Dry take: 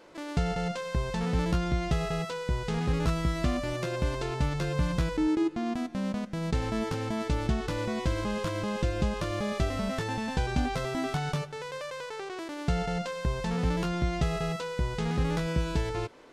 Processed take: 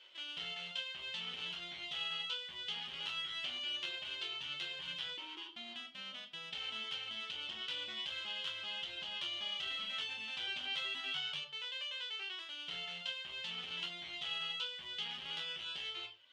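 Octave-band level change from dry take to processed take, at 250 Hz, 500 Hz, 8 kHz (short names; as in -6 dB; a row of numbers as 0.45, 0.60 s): -31.0, -24.5, -14.0 dB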